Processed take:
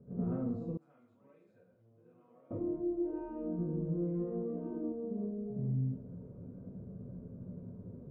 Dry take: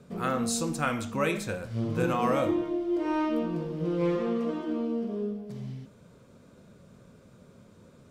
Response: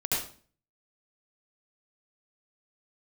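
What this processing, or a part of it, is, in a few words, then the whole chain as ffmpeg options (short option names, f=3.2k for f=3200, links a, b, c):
television next door: -filter_complex "[0:a]acompressor=threshold=-38dB:ratio=5,lowpass=420[a];[1:a]atrim=start_sample=2205[b];[a][b]afir=irnorm=-1:irlink=0,asettb=1/sr,asplit=3[c][d][e];[c]atrim=end=0.774[f];[d]atrim=start=0.77:end=2.51,asetpts=PTS-STARTPTS,afade=t=in:d=0.004:c=qsin,afade=t=out:st=1.736:d=0.004:c=qsin,aderivative[g];[e]atrim=start=2.506[h];[f][g]acrossfade=d=0.004:c1=hsin:c2=qsin[i];[i][h]acrossfade=d=0.004:c1=qsin:c2=hsin,volume=-3dB"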